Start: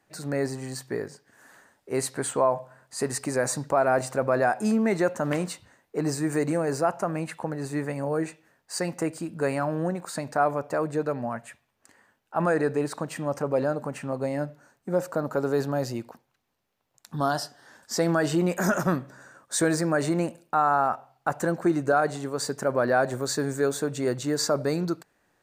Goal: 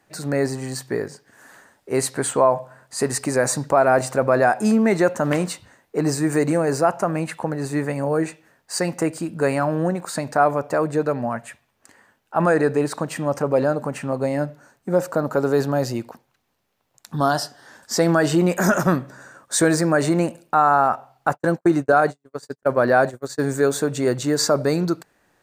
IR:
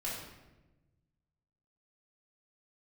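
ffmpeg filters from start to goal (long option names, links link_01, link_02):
-filter_complex "[0:a]asplit=3[link_01][link_02][link_03];[link_01]afade=type=out:start_time=21.33:duration=0.02[link_04];[link_02]agate=range=-54dB:threshold=-26dB:ratio=16:detection=peak,afade=type=in:start_time=21.33:duration=0.02,afade=type=out:start_time=23.4:duration=0.02[link_05];[link_03]afade=type=in:start_time=23.4:duration=0.02[link_06];[link_04][link_05][link_06]amix=inputs=3:normalize=0,volume=6dB"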